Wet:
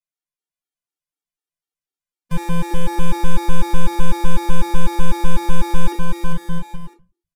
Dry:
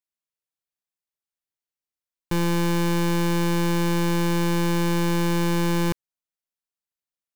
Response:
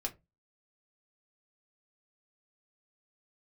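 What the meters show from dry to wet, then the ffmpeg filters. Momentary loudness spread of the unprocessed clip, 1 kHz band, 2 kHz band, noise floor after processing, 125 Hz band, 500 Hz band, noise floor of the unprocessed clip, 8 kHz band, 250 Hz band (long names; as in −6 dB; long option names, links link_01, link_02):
3 LU, +3.0 dB, −1.5 dB, below −85 dBFS, −0.5 dB, −3.0 dB, below −85 dBFS, −1.5 dB, −3.0 dB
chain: -filter_complex "[0:a]aecho=1:1:400|660|829|938.8|1010:0.631|0.398|0.251|0.158|0.1[link_01];[1:a]atrim=start_sample=2205,afade=type=out:start_time=0.29:duration=0.01,atrim=end_sample=13230,asetrate=26019,aresample=44100[link_02];[link_01][link_02]afir=irnorm=-1:irlink=0,afftfilt=real='re*gt(sin(2*PI*4*pts/sr)*(1-2*mod(floor(b*sr/1024/240),2)),0)':imag='im*gt(sin(2*PI*4*pts/sr)*(1-2*mod(floor(b*sr/1024/240),2)),0)':win_size=1024:overlap=0.75,volume=-3dB"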